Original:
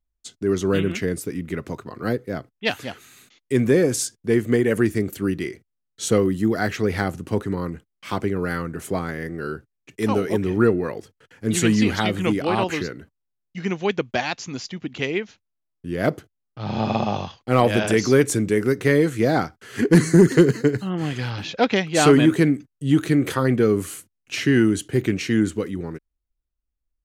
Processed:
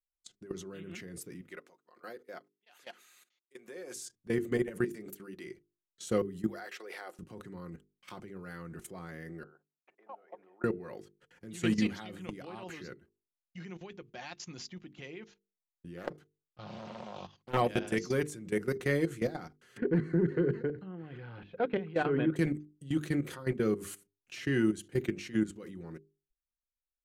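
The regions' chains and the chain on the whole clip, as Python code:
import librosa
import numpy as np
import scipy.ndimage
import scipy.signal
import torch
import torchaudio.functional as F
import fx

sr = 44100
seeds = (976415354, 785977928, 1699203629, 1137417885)

y = fx.chain(x, sr, fx.highpass(hz=510.0, slope=12),
    fx.tremolo_abs(hz=1.2), at=(1.41, 3.96))
y = fx.chain(y, sr, fx.highpass(hz=200.0, slope=12),
    fx.hum_notches(base_hz=60, count=7), at=(4.84, 5.47))
y = fx.chain(y, sr, fx.highpass(hz=430.0, slope=24),
    fx.notch(hz=6500.0, q=10.0), at=(6.47, 7.19))
y = fx.chain(y, sr, fx.ladder_bandpass(hz=820.0, resonance_pct=55),
    fx.band_squash(depth_pct=70), at=(9.43, 10.64))
y = fx.chain(y, sr, fx.low_shelf(hz=260.0, db=-4.0),
    fx.doppler_dist(depth_ms=0.62), at=(15.97, 17.57))
y = fx.chain(y, sr, fx.air_absorb(metres=500.0),
    fx.small_body(hz=(450.0, 1500.0), ring_ms=25, db=7), at=(19.77, 22.36))
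y = fx.level_steps(y, sr, step_db=18)
y = fx.hum_notches(y, sr, base_hz=50, count=9)
y = y + 0.32 * np.pad(y, (int(5.6 * sr / 1000.0), 0))[:len(y)]
y = F.gain(torch.from_numpy(y), -8.5).numpy()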